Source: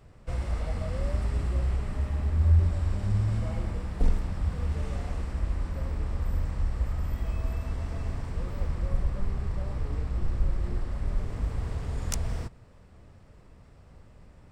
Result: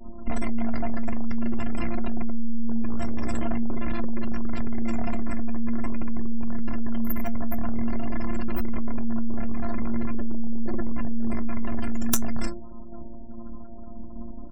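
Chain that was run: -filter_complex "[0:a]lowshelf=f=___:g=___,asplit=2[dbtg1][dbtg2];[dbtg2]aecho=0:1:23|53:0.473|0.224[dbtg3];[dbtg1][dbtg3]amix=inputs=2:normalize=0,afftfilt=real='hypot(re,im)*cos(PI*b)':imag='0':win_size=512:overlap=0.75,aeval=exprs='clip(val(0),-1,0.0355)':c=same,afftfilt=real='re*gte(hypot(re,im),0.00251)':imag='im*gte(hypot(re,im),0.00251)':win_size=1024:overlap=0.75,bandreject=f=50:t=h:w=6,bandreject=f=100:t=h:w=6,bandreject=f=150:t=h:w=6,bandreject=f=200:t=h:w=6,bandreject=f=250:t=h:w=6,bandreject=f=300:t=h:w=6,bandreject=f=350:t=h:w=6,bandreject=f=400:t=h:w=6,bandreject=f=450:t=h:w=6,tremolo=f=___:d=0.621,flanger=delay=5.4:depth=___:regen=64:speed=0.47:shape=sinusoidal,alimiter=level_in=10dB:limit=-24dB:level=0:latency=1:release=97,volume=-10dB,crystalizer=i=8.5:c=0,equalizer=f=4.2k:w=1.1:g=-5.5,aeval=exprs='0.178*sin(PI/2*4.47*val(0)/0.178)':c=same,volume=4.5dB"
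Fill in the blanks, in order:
240, 4.5, 230, 4.9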